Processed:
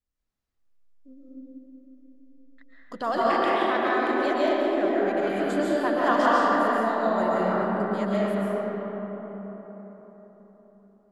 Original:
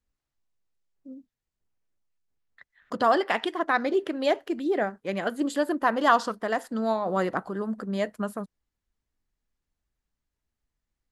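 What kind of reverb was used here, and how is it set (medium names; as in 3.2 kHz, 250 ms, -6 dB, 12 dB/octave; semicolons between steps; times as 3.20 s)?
algorithmic reverb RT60 4.6 s, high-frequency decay 0.4×, pre-delay 95 ms, DRR -8.5 dB; trim -7 dB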